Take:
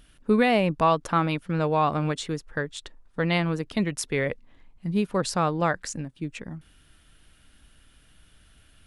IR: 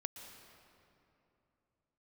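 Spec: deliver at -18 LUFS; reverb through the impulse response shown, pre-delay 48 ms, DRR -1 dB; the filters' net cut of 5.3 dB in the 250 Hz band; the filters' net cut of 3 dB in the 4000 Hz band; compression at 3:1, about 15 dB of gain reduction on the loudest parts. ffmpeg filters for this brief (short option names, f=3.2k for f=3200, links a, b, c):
-filter_complex "[0:a]equalizer=f=250:t=o:g=-8,equalizer=f=4k:t=o:g=-4,acompressor=threshold=-39dB:ratio=3,asplit=2[a][b];[1:a]atrim=start_sample=2205,adelay=48[c];[b][c]afir=irnorm=-1:irlink=0,volume=3dB[d];[a][d]amix=inputs=2:normalize=0,volume=19dB"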